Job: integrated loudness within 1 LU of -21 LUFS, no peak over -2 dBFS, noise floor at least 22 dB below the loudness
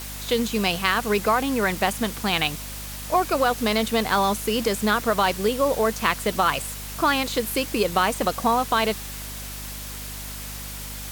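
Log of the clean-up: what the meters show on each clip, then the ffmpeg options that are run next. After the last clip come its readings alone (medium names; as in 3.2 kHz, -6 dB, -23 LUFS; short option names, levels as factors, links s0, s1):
hum 50 Hz; highest harmonic 250 Hz; hum level -36 dBFS; noise floor -35 dBFS; noise floor target -46 dBFS; loudness -23.5 LUFS; peak level -4.5 dBFS; loudness target -21.0 LUFS
-> -af "bandreject=f=50:t=h:w=6,bandreject=f=100:t=h:w=6,bandreject=f=150:t=h:w=6,bandreject=f=200:t=h:w=6,bandreject=f=250:t=h:w=6"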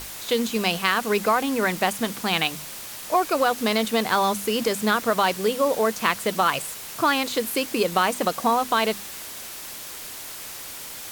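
hum not found; noise floor -37 dBFS; noise floor target -45 dBFS
-> -af "afftdn=nr=8:nf=-37"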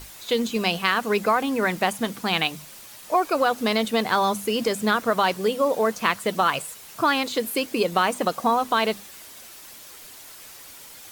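noise floor -44 dBFS; noise floor target -45 dBFS
-> -af "afftdn=nr=6:nf=-44"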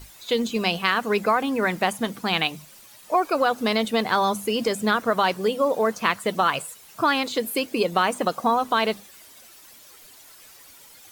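noise floor -49 dBFS; loudness -23.5 LUFS; peak level -5.0 dBFS; loudness target -21.0 LUFS
-> -af "volume=1.33"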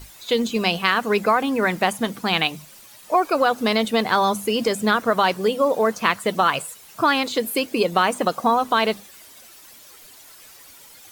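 loudness -21.0 LUFS; peak level -2.5 dBFS; noise floor -46 dBFS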